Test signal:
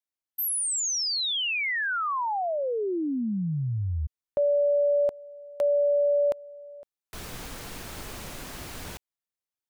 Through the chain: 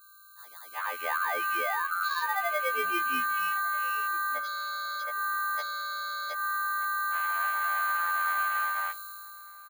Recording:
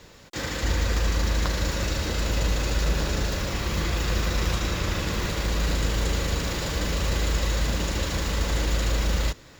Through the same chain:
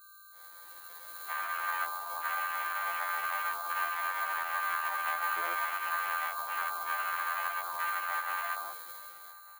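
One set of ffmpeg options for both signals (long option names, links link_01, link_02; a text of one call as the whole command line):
ffmpeg -i in.wav -filter_complex "[0:a]aeval=exprs='val(0)+0.0224*sin(2*PI*1200*n/s)':channel_layout=same,dynaudnorm=framelen=180:gausssize=11:maxgain=16dB,acrusher=samples=16:mix=1:aa=0.000001,highpass=840,afwtdn=0.112,aexciter=amount=5.1:drive=3.3:freq=9700,alimiter=limit=-9.5dB:level=0:latency=1:release=128,asplit=2[link_01][link_02];[link_02]adelay=1194,lowpass=frequency=1600:poles=1,volume=-22dB,asplit=2[link_03][link_04];[link_04]adelay=1194,lowpass=frequency=1600:poles=1,volume=0.39,asplit=2[link_05][link_06];[link_06]adelay=1194,lowpass=frequency=1600:poles=1,volume=0.39[link_07];[link_01][link_03][link_05][link_07]amix=inputs=4:normalize=0,afftfilt=real='re*2*eq(mod(b,4),0)':imag='im*2*eq(mod(b,4),0)':win_size=2048:overlap=0.75,volume=-8.5dB" out.wav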